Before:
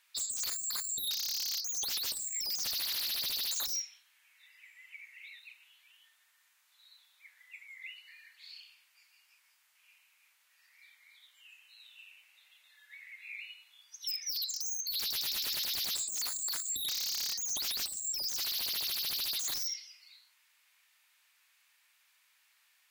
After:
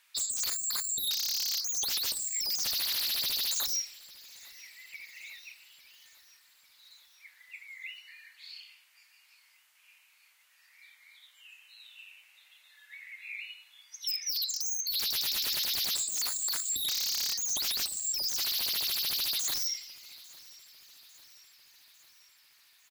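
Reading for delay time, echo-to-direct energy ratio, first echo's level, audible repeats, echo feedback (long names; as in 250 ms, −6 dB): 849 ms, −20.0 dB, −22.0 dB, 3, 60%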